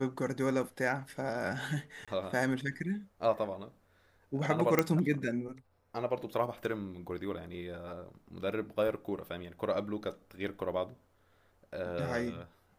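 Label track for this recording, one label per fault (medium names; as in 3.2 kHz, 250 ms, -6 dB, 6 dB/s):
2.050000	2.080000	dropout 26 ms
4.790000	4.790000	pop -11 dBFS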